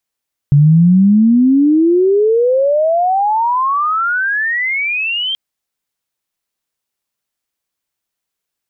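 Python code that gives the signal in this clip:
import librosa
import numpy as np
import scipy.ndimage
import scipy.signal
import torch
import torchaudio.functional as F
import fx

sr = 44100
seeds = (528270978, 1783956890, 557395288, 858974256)

y = fx.chirp(sr, length_s=4.83, from_hz=140.0, to_hz=3200.0, law='logarithmic', from_db=-4.5, to_db=-15.5)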